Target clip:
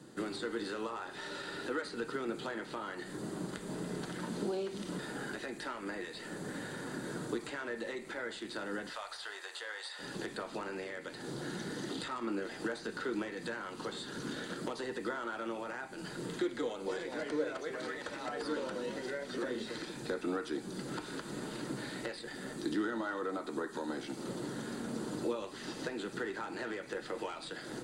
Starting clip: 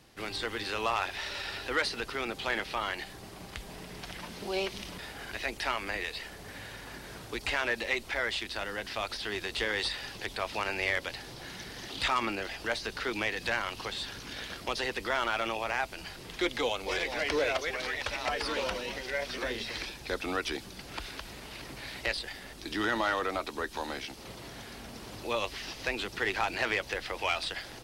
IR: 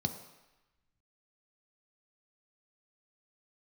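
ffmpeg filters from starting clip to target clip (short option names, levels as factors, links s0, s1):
-filter_complex "[0:a]asettb=1/sr,asplit=3[s0][s1][s2];[s0]atrim=end=8.894[s3];[s1]atrim=start=8.89:end=9.99,asetpts=PTS-STARTPTS,afade=t=in:d=0.004:c=qsin,afade=t=out:st=1.096:d=0.004:c=qsin,highpass=f=650:w=0.5412,highpass=f=650:w=1.3066[s4];[s2]atrim=start=9.986[s5];[s3][s4]acrossfade=d=0.004:c1=hsin:c2=qsin[s6];[s6][s5]acrossfade=d=0.004:c1=qsin:c2=hsin,acompressor=threshold=0.01:ratio=6[s7];[1:a]atrim=start_sample=2205,asetrate=79380,aresample=44100[s8];[s7][s8]afir=irnorm=-1:irlink=0,volume=1.19"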